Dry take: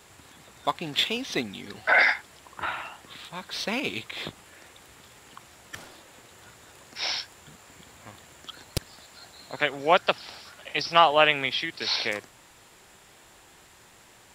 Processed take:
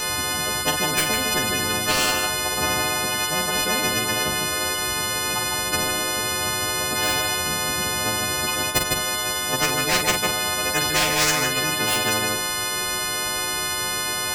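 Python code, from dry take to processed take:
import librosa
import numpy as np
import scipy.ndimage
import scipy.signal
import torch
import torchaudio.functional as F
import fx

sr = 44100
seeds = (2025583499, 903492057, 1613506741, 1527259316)

p1 = fx.freq_snap(x, sr, grid_st=3)
p2 = np.clip(p1, -10.0 ** (-14.0 / 20.0), 10.0 ** (-14.0 / 20.0))
p3 = p1 + (p2 * 10.0 ** (-10.0 / 20.0))
p4 = fx.formant_shift(p3, sr, semitones=-3)
p5 = fx.doubler(p4, sr, ms=44.0, db=-10)
p6 = p5 + fx.echo_single(p5, sr, ms=154, db=-11.5, dry=0)
p7 = fx.spectral_comp(p6, sr, ratio=10.0)
y = p7 * 10.0 ** (-4.0 / 20.0)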